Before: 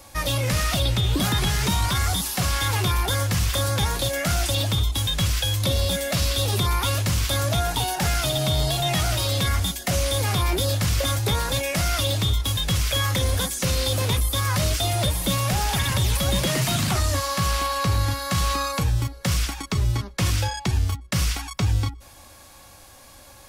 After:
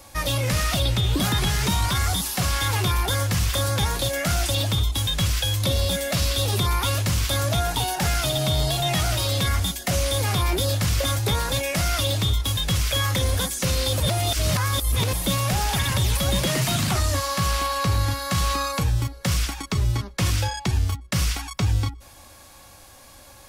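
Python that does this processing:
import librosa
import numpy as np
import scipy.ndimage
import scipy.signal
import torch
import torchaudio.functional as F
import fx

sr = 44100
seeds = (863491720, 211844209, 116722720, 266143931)

y = fx.edit(x, sr, fx.reverse_span(start_s=14.0, length_s=1.13), tone=tone)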